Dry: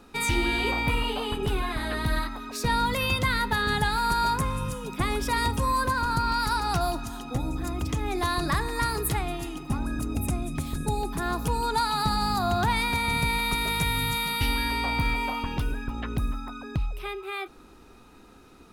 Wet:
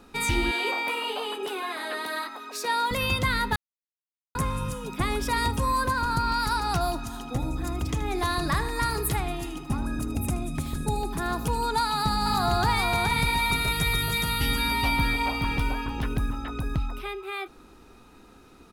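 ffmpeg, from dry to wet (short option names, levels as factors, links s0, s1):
-filter_complex "[0:a]asettb=1/sr,asplit=3[s0][s1][s2];[s0]atrim=end=0.514[s3];[s1]atrim=start=0.51:end=2.91,asetpts=PTS-STARTPTS,afade=t=in:d=0.004:c=qsin,afade=t=out:st=2.396:d=0.004:c=qsin,highpass=f=350:w=0.5412,highpass=f=350:w=1.3066[s4];[s2]atrim=start=2.906[s5];[s3][s4]acrossfade=d=0.004:c1=hsin:c2=qsin[s6];[s6][s5]acrossfade=d=0.004:c1=qsin:c2=hsin,asettb=1/sr,asplit=3[s7][s8][s9];[s7]atrim=end=6.994[s10];[s8]atrim=start=6.99:end=11.65,asetpts=PTS-STARTPTS,afade=t=in:d=0.004:c=qsin,afade=t=out:st=4.656:d=0.004:c=qsin,aecho=1:1:78:0.2,atrim=end_sample=205506[s11];[s9]atrim=start=11.646[s12];[s10][s11]acrossfade=d=0.004:c1=hsin:c2=qsin[s13];[s13][s12]acrossfade=d=0.004:c1=qsin:c2=hsin,asplit=3[s14][s15][s16];[s14]afade=t=out:st=12.25:d=0.02[s17];[s15]aecho=1:1:422:0.668,afade=t=in:st=12.25:d=0.02,afade=t=out:st=17:d=0.02[s18];[s16]afade=t=in:st=17:d=0.02[s19];[s17][s18][s19]amix=inputs=3:normalize=0,asplit=3[s20][s21][s22];[s20]atrim=end=3.56,asetpts=PTS-STARTPTS,afade=t=out:st=3.556:d=0.004:c=hsin[s23];[s21]atrim=start=3.56:end=4.35,asetpts=PTS-STARTPTS,volume=0[s24];[s22]atrim=start=4.35,asetpts=PTS-STARTPTS,afade=t=in:d=0.004:c=hsin[s25];[s23][s24][s25]concat=n=3:v=0:a=1"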